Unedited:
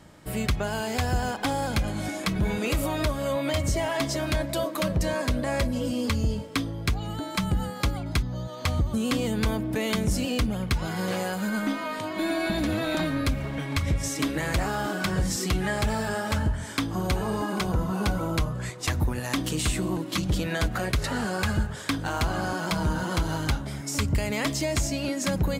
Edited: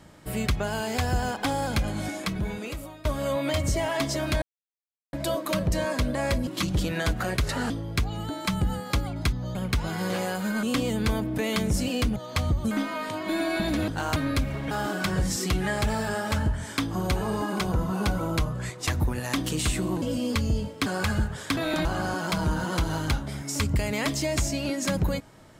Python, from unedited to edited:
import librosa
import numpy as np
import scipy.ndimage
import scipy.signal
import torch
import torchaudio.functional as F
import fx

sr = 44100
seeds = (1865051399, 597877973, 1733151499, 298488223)

y = fx.edit(x, sr, fx.fade_out_to(start_s=2.0, length_s=1.05, floor_db=-23.5),
    fx.insert_silence(at_s=4.42, length_s=0.71),
    fx.swap(start_s=5.76, length_s=0.84, other_s=20.02, other_length_s=1.23),
    fx.swap(start_s=8.45, length_s=0.55, other_s=10.53, other_length_s=1.08),
    fx.swap(start_s=12.78, length_s=0.28, other_s=21.96, other_length_s=0.28),
    fx.cut(start_s=13.61, length_s=1.1), tone=tone)